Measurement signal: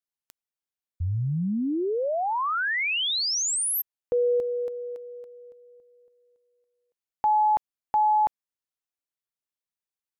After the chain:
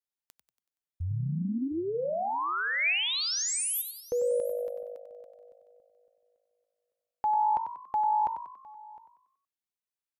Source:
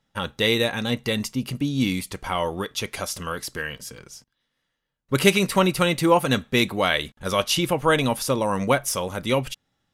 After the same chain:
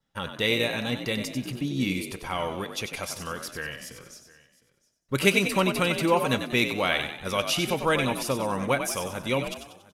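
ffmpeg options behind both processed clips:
-filter_complex "[0:a]asplit=2[a][b];[b]asplit=5[c][d][e][f][g];[c]adelay=94,afreqshift=52,volume=-8.5dB[h];[d]adelay=188,afreqshift=104,volume=-15.4dB[i];[e]adelay=282,afreqshift=156,volume=-22.4dB[j];[f]adelay=376,afreqshift=208,volume=-29.3dB[k];[g]adelay=470,afreqshift=260,volume=-36.2dB[l];[h][i][j][k][l]amix=inputs=5:normalize=0[m];[a][m]amix=inputs=2:normalize=0,adynamicequalizer=threshold=0.01:dfrequency=2400:dqfactor=4.5:tfrequency=2400:tqfactor=4.5:attack=5:release=100:ratio=0.375:range=3:mode=boostabove:tftype=bell,asplit=2[n][o];[o]aecho=0:1:709:0.0794[p];[n][p]amix=inputs=2:normalize=0,volume=-5dB"

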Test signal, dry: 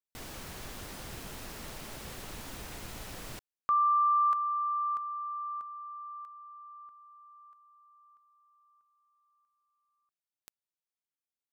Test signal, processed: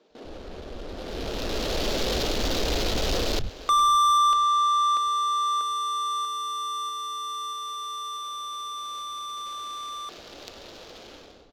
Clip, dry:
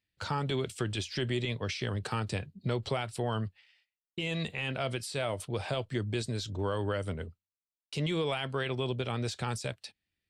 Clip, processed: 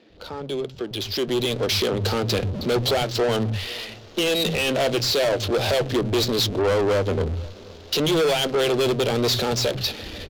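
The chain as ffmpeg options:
-filter_complex "[0:a]aeval=exprs='val(0)+0.5*0.0106*sgn(val(0))':c=same,equalizer=f=125:t=o:w=1:g=-9,equalizer=f=500:t=o:w=1:g=5,equalizer=f=1k:t=o:w=1:g=-8,equalizer=f=2k:t=o:w=1:g=-9,equalizer=f=4k:t=o:w=1:g=6,dynaudnorm=f=930:g=3:m=16dB,acrossover=split=170[a][b];[a]adelay=100[c];[c][b]amix=inputs=2:normalize=0,aresample=16000,asoftclip=type=tanh:threshold=-16.5dB,aresample=44100,aeval=exprs='0.224*(cos(1*acos(clip(val(0)/0.224,-1,1)))-cos(1*PI/2))+0.0141*(cos(5*acos(clip(val(0)/0.224,-1,1)))-cos(5*PI/2))':c=same,asplit=2[d][e];[e]adelay=487,lowpass=f=2k:p=1,volume=-21.5dB,asplit=2[f][g];[g]adelay=487,lowpass=f=2k:p=1,volume=0.5,asplit=2[h][i];[i]adelay=487,lowpass=f=2k:p=1,volume=0.5,asplit=2[j][k];[k]adelay=487,lowpass=f=2k:p=1,volume=0.5[l];[f][h][j][l]amix=inputs=4:normalize=0[m];[d][m]amix=inputs=2:normalize=0,adynamicsmooth=sensitivity=4:basefreq=1.2k"

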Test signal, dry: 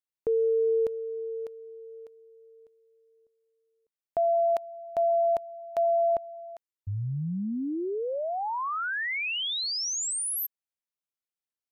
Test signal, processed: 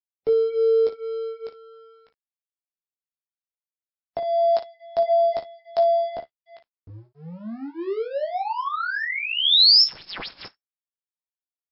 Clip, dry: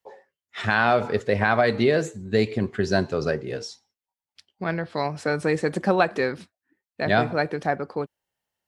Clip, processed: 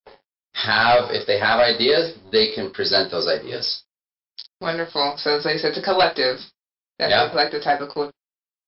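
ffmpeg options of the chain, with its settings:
-filter_complex "[0:a]acrossover=split=320|4000[a][b][c];[a]acompressor=threshold=-41dB:ratio=5:attack=4.9:release=675:knee=1:detection=peak[d];[d][b][c]amix=inputs=3:normalize=0,flanger=delay=6.7:depth=7.4:regen=-38:speed=0.24:shape=sinusoidal,aexciter=amount=6.1:drive=6.3:freq=3.8k,aeval=exprs='sgn(val(0))*max(abs(val(0))-0.00398,0)':c=same,aecho=1:1:18|57:0.631|0.266,asoftclip=type=hard:threshold=-18dB,volume=8dB" -ar 12000 -c:a libmp3lame -b:a 48k

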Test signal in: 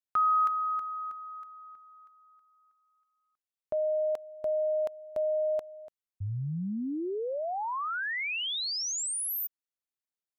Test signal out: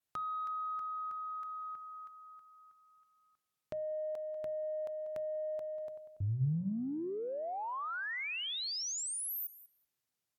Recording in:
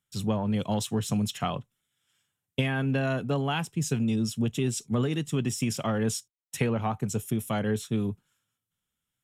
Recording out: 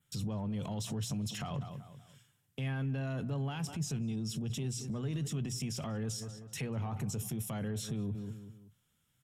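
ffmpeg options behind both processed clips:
-filter_complex "[0:a]adynamicequalizer=threshold=0.00251:dfrequency=5400:dqfactor=2.4:tfrequency=5400:tqfactor=2.4:attack=5:release=100:ratio=0.375:range=3:mode=boostabove:tftype=bell,asoftclip=type=tanh:threshold=-15dB,alimiter=level_in=3.5dB:limit=-24dB:level=0:latency=1:release=20,volume=-3.5dB,asplit=2[a][b];[b]adelay=191,lowpass=f=3.2k:p=1,volume=-19dB,asplit=2[c][d];[d]adelay=191,lowpass=f=3.2k:p=1,volume=0.4,asplit=2[e][f];[f]adelay=191,lowpass=f=3.2k:p=1,volume=0.4[g];[a][c][e][g]amix=inputs=4:normalize=0,acompressor=threshold=-48dB:ratio=4:attack=2.7:release=21:knee=1:detection=rms,equalizer=f=130:w=1.3:g=8.5,bandreject=f=60:t=h:w=6,bandreject=f=120:t=h:w=6,bandreject=f=180:t=h:w=6,volume=7dB" -ar 44100 -c:a libvorbis -b:a 128k

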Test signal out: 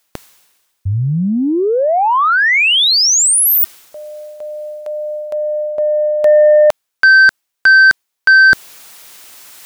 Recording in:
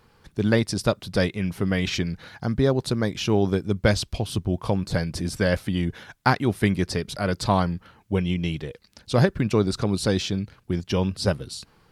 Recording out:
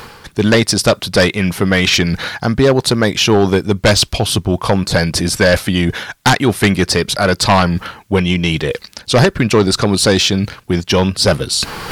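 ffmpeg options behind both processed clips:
-af "lowshelf=f=400:g=-9,areverse,acompressor=mode=upward:threshold=-27dB:ratio=2.5,areverse,aeval=exprs='0.596*sin(PI/2*4.47*val(0)/0.596)':c=same"

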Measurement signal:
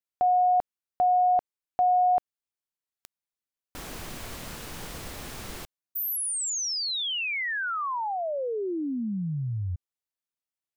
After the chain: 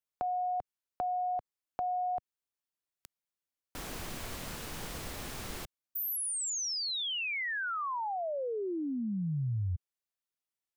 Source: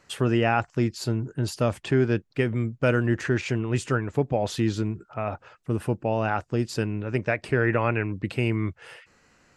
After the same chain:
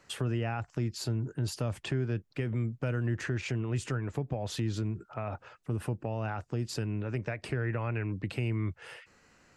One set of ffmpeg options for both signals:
-filter_complex "[0:a]acrossover=split=130[a][b];[b]acompressor=threshold=-31dB:ratio=4:attack=4.5:release=194:knee=2.83:detection=peak[c];[a][c]amix=inputs=2:normalize=0,volume=-2dB"

